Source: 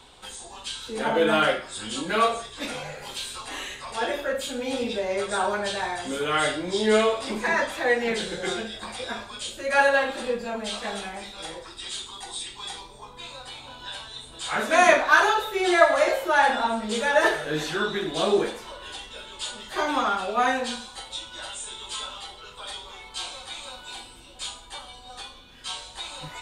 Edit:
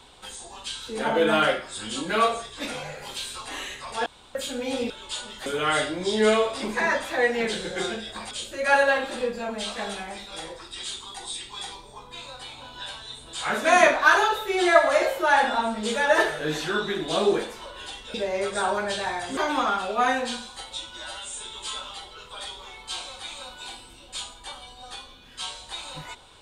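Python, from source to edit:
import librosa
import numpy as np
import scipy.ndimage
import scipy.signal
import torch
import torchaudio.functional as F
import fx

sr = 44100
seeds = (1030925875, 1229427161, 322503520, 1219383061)

y = fx.edit(x, sr, fx.room_tone_fill(start_s=4.06, length_s=0.29),
    fx.swap(start_s=4.9, length_s=1.23, other_s=19.2, other_length_s=0.56),
    fx.cut(start_s=8.98, length_s=0.39),
    fx.stretch_span(start_s=21.36, length_s=0.25, factor=1.5), tone=tone)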